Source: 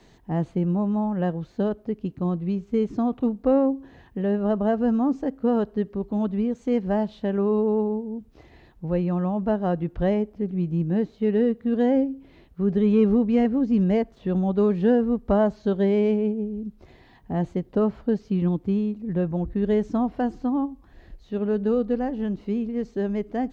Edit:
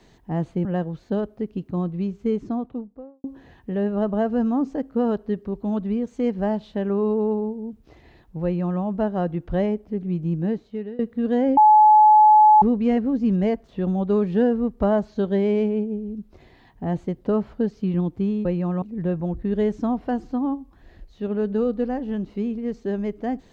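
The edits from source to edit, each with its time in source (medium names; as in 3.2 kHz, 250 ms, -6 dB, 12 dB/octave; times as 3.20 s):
0.65–1.13 s: delete
2.67–3.72 s: studio fade out
8.92–9.29 s: copy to 18.93 s
10.91–11.47 s: fade out, to -21.5 dB
12.05–13.10 s: bleep 854 Hz -9 dBFS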